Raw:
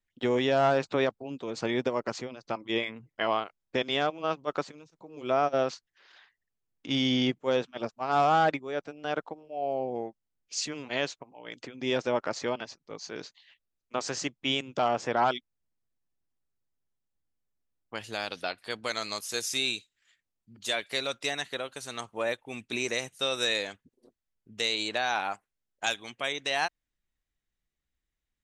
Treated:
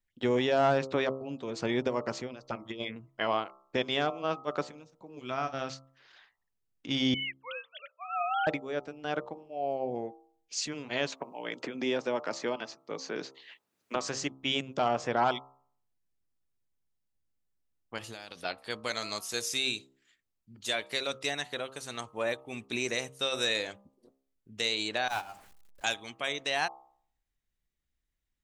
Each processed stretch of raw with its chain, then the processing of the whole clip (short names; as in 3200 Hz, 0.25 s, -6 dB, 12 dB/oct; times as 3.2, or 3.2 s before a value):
2.42–2.96 envelope phaser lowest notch 170 Hz, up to 1900 Hz, full sweep at -25 dBFS + negative-ratio compressor -34 dBFS, ratio -0.5
5.19–5.7 bell 500 Hz -12 dB 1.3 oct + doubler 37 ms -13 dB
7.14–8.47 sine-wave speech + Bessel high-pass 1100 Hz, order 4 + tilt +4 dB/oct
11.12–13.96 HPF 190 Hz + three-band squash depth 70%
17.98–18.45 high shelf 5300 Hz +5.5 dB + compressor, threshold -38 dBFS
25.08–25.84 zero-crossing step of -29 dBFS + gate -26 dBFS, range -21 dB
whole clip: low shelf 190 Hz +4 dB; de-hum 66.67 Hz, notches 20; gain -1.5 dB